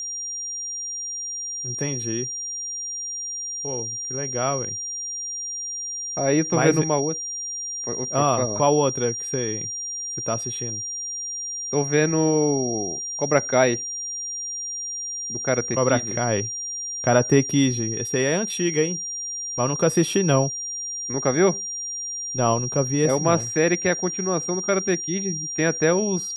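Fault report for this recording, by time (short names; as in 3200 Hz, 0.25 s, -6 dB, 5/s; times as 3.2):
tone 5700 Hz -28 dBFS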